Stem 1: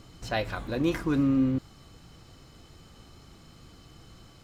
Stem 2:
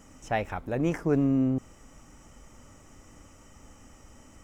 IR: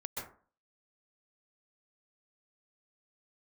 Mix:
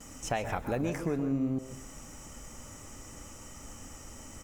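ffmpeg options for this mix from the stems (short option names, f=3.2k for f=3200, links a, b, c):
-filter_complex "[0:a]volume=-16.5dB[a];[1:a]highshelf=f=4.8k:g=10,acompressor=threshold=-32dB:ratio=6,volume=-1,adelay=4,volume=1dB,asplit=2[b][c];[c]volume=-5.5dB[d];[2:a]atrim=start_sample=2205[e];[d][e]afir=irnorm=-1:irlink=0[f];[a][b][f]amix=inputs=3:normalize=0"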